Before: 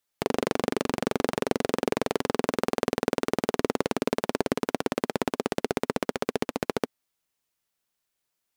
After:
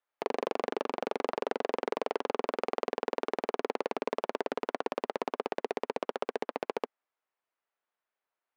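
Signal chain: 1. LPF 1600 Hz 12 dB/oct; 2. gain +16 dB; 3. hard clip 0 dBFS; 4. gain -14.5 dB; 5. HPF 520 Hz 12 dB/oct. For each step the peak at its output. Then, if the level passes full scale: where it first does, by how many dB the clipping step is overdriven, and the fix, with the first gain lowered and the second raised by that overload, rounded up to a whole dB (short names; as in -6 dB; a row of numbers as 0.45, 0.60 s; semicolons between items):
-8.0, +8.0, 0.0, -14.5, -13.5 dBFS; step 2, 8.0 dB; step 2 +8 dB, step 4 -6.5 dB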